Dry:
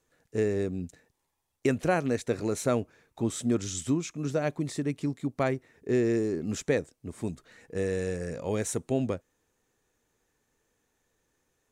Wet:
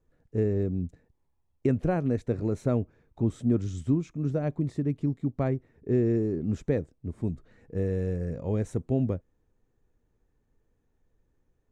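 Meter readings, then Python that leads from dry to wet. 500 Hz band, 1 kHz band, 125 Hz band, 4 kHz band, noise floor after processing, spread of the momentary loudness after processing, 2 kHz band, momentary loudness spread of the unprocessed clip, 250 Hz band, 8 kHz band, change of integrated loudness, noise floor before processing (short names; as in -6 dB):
-1.5 dB, -5.0 dB, +6.0 dB, under -10 dB, -74 dBFS, 8 LU, -9.5 dB, 10 LU, +2.0 dB, under -15 dB, +1.0 dB, -79 dBFS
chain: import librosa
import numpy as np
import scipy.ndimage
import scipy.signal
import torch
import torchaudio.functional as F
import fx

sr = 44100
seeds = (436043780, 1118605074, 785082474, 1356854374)

y = fx.tilt_eq(x, sr, slope=-4.0)
y = y * 10.0 ** (-6.0 / 20.0)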